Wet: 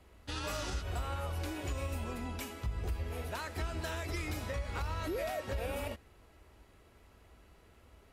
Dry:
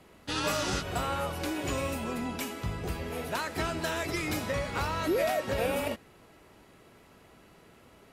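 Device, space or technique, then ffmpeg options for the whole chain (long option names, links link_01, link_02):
car stereo with a boomy subwoofer: -af "lowshelf=frequency=100:width_type=q:width=1.5:gain=11.5,alimiter=limit=-21dB:level=0:latency=1:release=106,volume=-6.5dB"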